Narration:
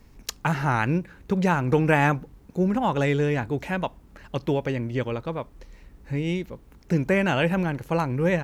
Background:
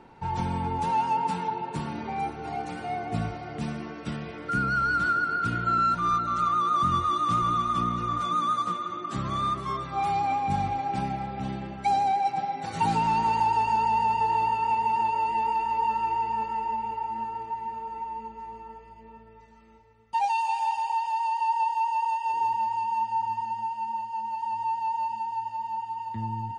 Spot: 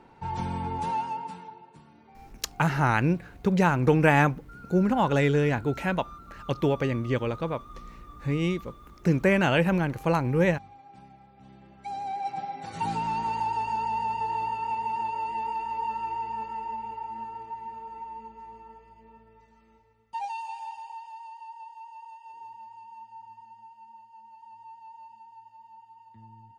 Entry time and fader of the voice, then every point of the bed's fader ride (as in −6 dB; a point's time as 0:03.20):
2.15 s, 0.0 dB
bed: 0:00.89 −2.5 dB
0:01.83 −21.5 dB
0:11.35 −21.5 dB
0:12.32 −5 dB
0:19.85 −5 dB
0:21.56 −18.5 dB